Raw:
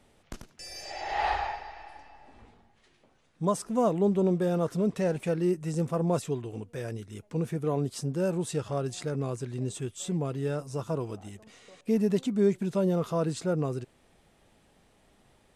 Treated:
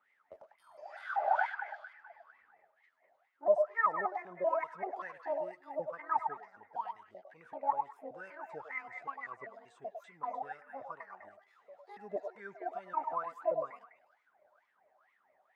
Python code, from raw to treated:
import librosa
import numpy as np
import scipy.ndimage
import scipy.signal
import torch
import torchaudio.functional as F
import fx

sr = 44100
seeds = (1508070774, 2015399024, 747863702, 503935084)

y = fx.pitch_trill(x, sr, semitones=10.5, every_ms=193)
y = fx.wah_lfo(y, sr, hz=2.2, low_hz=590.0, high_hz=2100.0, q=17.0)
y = fx.echo_stepped(y, sr, ms=101, hz=730.0, octaves=1.4, feedback_pct=70, wet_db=-3.5)
y = y * 10.0 ** (8.5 / 20.0)